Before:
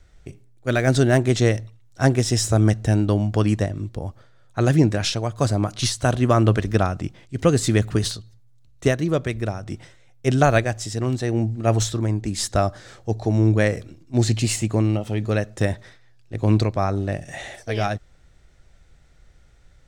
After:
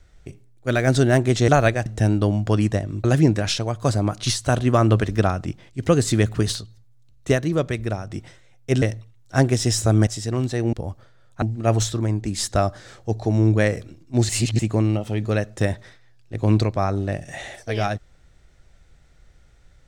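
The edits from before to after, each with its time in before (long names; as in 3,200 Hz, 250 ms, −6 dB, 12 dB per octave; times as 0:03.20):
0:01.48–0:02.73: swap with 0:10.38–0:10.76
0:03.91–0:04.60: move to 0:11.42
0:14.29–0:14.59: reverse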